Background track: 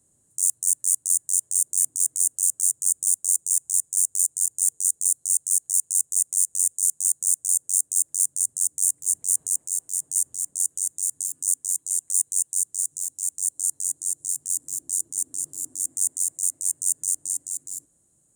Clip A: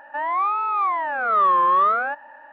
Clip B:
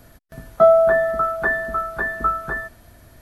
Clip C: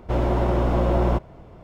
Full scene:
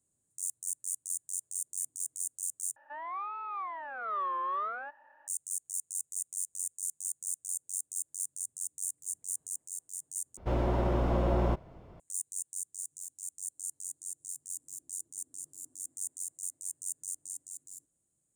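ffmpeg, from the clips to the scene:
-filter_complex "[0:a]volume=-14.5dB[a];[1:a]equalizer=f=160:t=o:w=0.77:g=-12[b];[a]asplit=3[c][d][e];[c]atrim=end=2.764[f];[b]atrim=end=2.52,asetpts=PTS-STARTPTS,volume=-16dB[g];[d]atrim=start=5.276:end=10.374[h];[3:a]atrim=end=1.63,asetpts=PTS-STARTPTS,volume=-7.5dB[i];[e]atrim=start=11.996[j];[f][g]acrossfade=d=0.004:c1=hsin:c2=hsin[k];[k][h]acrossfade=d=0.004:c1=hsin:c2=hsin[l];[l][i]acrossfade=d=0.004:c1=hsin:c2=hsin[m];[m][j]acrossfade=d=0.004:c1=hsin:c2=hsin"

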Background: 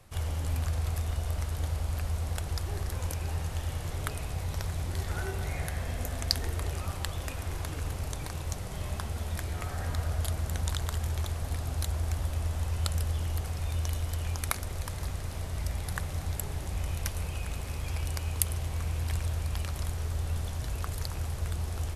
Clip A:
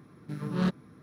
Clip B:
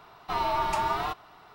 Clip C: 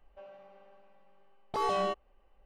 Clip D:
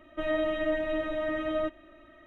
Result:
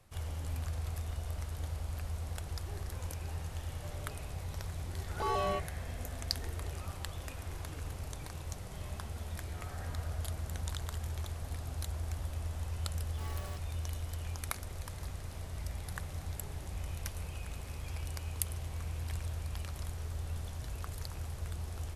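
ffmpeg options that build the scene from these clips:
-filter_complex "[3:a]asplit=2[a][b];[0:a]volume=-7dB[c];[b]acrusher=bits=3:dc=4:mix=0:aa=0.000001[d];[a]atrim=end=2.45,asetpts=PTS-STARTPTS,volume=-3dB,afade=t=in:d=0.004:c=hsin,afade=t=out:st=2.446:d=0.004:c=hsin,adelay=3660[e];[d]atrim=end=2.45,asetpts=PTS-STARTPTS,volume=-15.5dB,afade=t=in:d=0.004:c=hsin,afade=t=out:st=2.446:d=0.004:c=hsin,adelay=11640[f];[c][e][f]amix=inputs=3:normalize=0"

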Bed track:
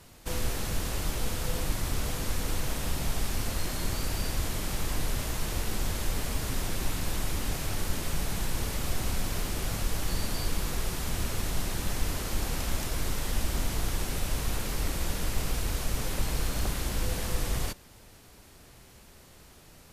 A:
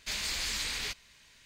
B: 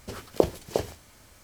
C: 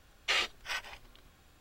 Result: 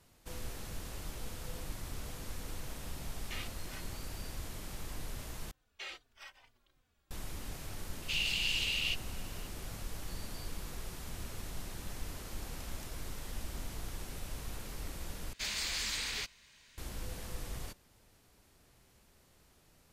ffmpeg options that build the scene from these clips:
-filter_complex "[3:a]asplit=2[a][b];[1:a]asplit=2[c][d];[0:a]volume=-12dB[e];[b]asplit=2[f][g];[g]adelay=3.3,afreqshift=-2.5[h];[f][h]amix=inputs=2:normalize=1[i];[c]highpass=f=2.8k:t=q:w=15[j];[e]asplit=3[k][l][m];[k]atrim=end=5.514[n];[i]atrim=end=1.6,asetpts=PTS-STARTPTS,volume=-12dB[o];[l]atrim=start=7.106:end=15.334[p];[d]atrim=end=1.45,asetpts=PTS-STARTPTS,volume=-2.5dB[q];[m]atrim=start=16.776[r];[a]atrim=end=1.6,asetpts=PTS-STARTPTS,volume=-15dB,afade=t=in:d=0.004:c=hsin,afade=t=out:st=1.596:d=0.004:c=hsin,adelay=3020[s];[j]atrim=end=1.45,asetpts=PTS-STARTPTS,volume=-9.5dB,afade=t=in:d=0.004:c=hsin,afade=t=out:st=1.446:d=0.004:c=hsin,adelay=353682S[t];[n][o]acrossfade=d=0.004:c1=hsin:c2=hsin[u];[u][p]acrossfade=d=0.004:c1=hsin:c2=hsin[v];[v][q]acrossfade=d=0.004:c1=hsin:c2=hsin[w];[w][r]acrossfade=d=0.004:c1=hsin:c2=hsin[x];[x][s][t]amix=inputs=3:normalize=0"

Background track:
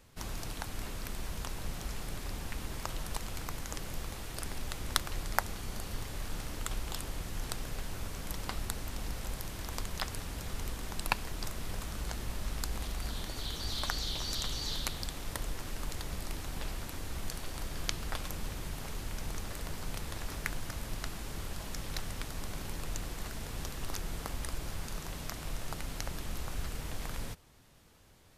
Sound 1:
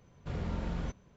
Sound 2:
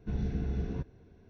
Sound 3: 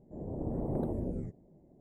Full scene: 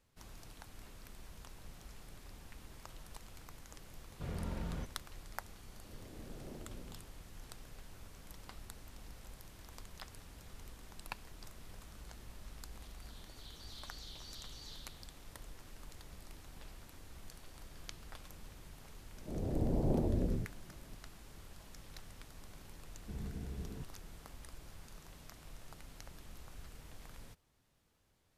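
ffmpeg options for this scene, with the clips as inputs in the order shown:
-filter_complex "[3:a]asplit=2[a][b];[0:a]volume=-14dB[c];[b]lowshelf=f=63:g=10[d];[1:a]atrim=end=1.16,asetpts=PTS-STARTPTS,volume=-5dB,afade=t=in:d=0.004:c=hsin,afade=t=out:st=1.156:d=0.004:c=hsin,adelay=3940[e];[a]atrim=end=1.8,asetpts=PTS-STARTPTS,volume=-17dB,afade=t=in:d=0.004:c=hsin,afade=t=out:st=1.796:d=0.004:c=hsin,adelay=5720[f];[d]atrim=end=1.8,asetpts=PTS-STARTPTS,volume=-0.5dB,afade=t=in:d=0.004:c=hsin,afade=t=out:st=1.796:d=0.004:c=hsin,adelay=19150[g];[2:a]atrim=end=1.29,asetpts=PTS-STARTPTS,volume=-11dB,afade=t=in:d=0.004:c=hsin,afade=t=out:st=1.286:d=0.004:c=hsin,adelay=23010[h];[c][e][f][g][h]amix=inputs=5:normalize=0"

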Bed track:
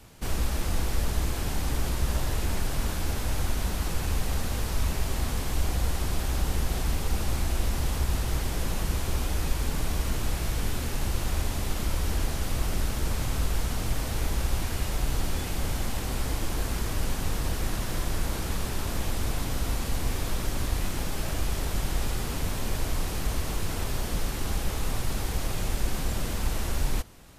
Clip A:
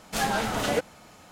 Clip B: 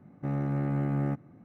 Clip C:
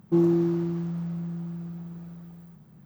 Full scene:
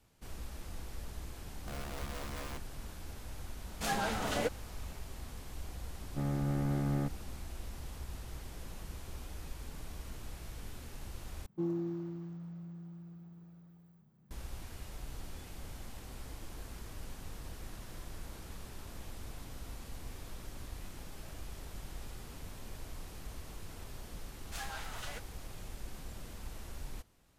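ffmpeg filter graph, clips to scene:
-filter_complex "[2:a]asplit=2[a][b];[1:a]asplit=2[c][d];[0:a]volume=-17dB[e];[a]aeval=exprs='(mod(21.1*val(0)+1,2)-1)/21.1':c=same[f];[c]highpass=55[g];[d]highpass=970[h];[e]asplit=2[i][j];[i]atrim=end=11.464[k];[3:a]atrim=end=2.85,asetpts=PTS-STARTPTS,volume=-14dB[l];[j]atrim=start=14.306[m];[f]atrim=end=1.44,asetpts=PTS-STARTPTS,volume=-13dB,afade=t=in:d=0.004:c=hsin,afade=t=out:st=1.436:d=0.004:c=hsin,adelay=1430[n];[g]atrim=end=1.31,asetpts=PTS-STARTPTS,volume=-7.5dB,afade=t=in:d=0.004:c=hsin,afade=t=out:st=1.306:d=0.004:c=hsin,adelay=3680[o];[b]atrim=end=1.44,asetpts=PTS-STARTPTS,volume=-4dB,afade=t=in:d=0.004:c=hsin,afade=t=out:st=1.436:d=0.004:c=hsin,adelay=261513S[p];[h]atrim=end=1.31,asetpts=PTS-STARTPTS,volume=-14dB,afade=t=in:d=0.004:c=hsin,afade=t=out:st=1.306:d=0.004:c=hsin,adelay=24390[q];[k][l]acrossfade=d=0.004:c1=hsin:c2=hsin[r];[r][m]acrossfade=d=0.004:c1=hsin:c2=hsin[s];[s][n][o][p][q]amix=inputs=5:normalize=0"

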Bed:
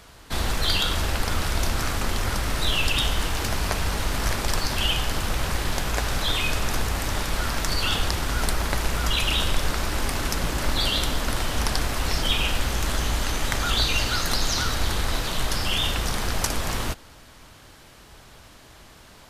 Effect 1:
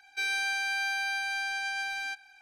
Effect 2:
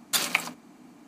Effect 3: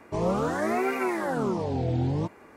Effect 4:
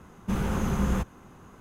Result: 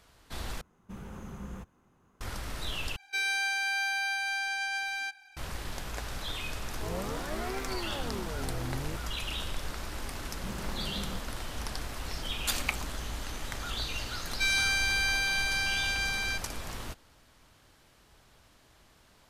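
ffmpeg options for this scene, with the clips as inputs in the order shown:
-filter_complex "[4:a]asplit=2[a][b];[1:a]asplit=2[c][d];[0:a]volume=-12.5dB[e];[c]highshelf=f=8.6k:g=3[f];[3:a]aeval=exprs='val(0)*gte(abs(val(0)),0.00562)':c=same[g];[b]highpass=110[h];[d]tiltshelf=f=1.2k:g=-9[i];[e]asplit=3[j][k][l];[j]atrim=end=0.614[m];[a]atrim=end=1.6,asetpts=PTS-STARTPTS,volume=-16dB[n];[k]atrim=start=2.206:end=2.964[o];[f]atrim=end=2.41[p];[l]atrim=start=5.366[q];[g]atrim=end=2.56,asetpts=PTS-STARTPTS,volume=-11dB,afade=t=in:d=0.004:c=hsin,afade=t=out:st=2.556:d=0.004:c=hsin,adelay=6690[r];[h]atrim=end=1.6,asetpts=PTS-STARTPTS,volume=-12.5dB,afade=t=in:d=0.004:c=hsin,afade=t=out:st=1.596:d=0.004:c=hsin,adelay=10170[s];[2:a]atrim=end=1.07,asetpts=PTS-STARTPTS,volume=-6.5dB,afade=t=in:d=0.004:c=hsin,afade=t=out:st=1.066:d=0.004:c=hsin,adelay=12340[t];[i]atrim=end=2.41,asetpts=PTS-STARTPTS,volume=-2dB,afade=t=in:d=0.004:c=hsin,afade=t=out:st=2.406:d=0.004:c=hsin,adelay=14230[u];[m][n]acrossfade=d=0.004:c1=hsin:c2=hsin[v];[v][o]acrossfade=d=0.004:c1=hsin:c2=hsin[w];[w][p]acrossfade=d=0.004:c1=hsin:c2=hsin[x];[x][q]acrossfade=d=0.004:c1=hsin:c2=hsin[y];[y][r][s][t][u]amix=inputs=5:normalize=0"

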